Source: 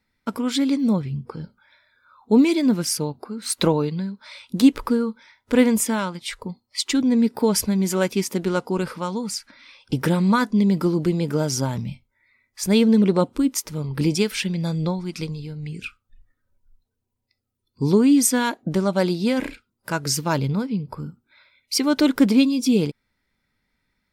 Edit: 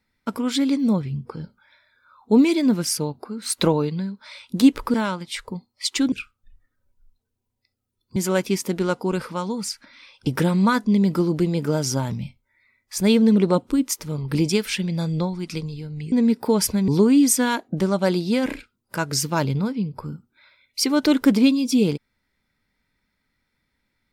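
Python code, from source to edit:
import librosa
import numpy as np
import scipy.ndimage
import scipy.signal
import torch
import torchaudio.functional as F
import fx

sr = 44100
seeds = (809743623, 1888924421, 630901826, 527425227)

y = fx.edit(x, sr, fx.cut(start_s=4.94, length_s=0.94),
    fx.swap(start_s=7.06, length_s=0.76, other_s=15.78, other_length_s=2.04), tone=tone)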